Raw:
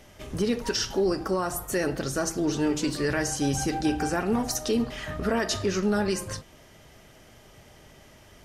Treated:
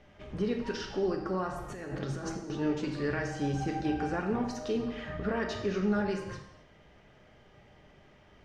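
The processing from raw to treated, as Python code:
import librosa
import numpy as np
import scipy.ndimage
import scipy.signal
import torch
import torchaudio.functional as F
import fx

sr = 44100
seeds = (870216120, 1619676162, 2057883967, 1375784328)

y = scipy.signal.sosfilt(scipy.signal.butter(2, 3000.0, 'lowpass', fs=sr, output='sos'), x)
y = fx.over_compress(y, sr, threshold_db=-33.0, ratio=-1.0, at=(1.57, 2.5))
y = fx.rev_gated(y, sr, seeds[0], gate_ms=300, shape='falling', drr_db=4.0)
y = y * librosa.db_to_amplitude(-6.5)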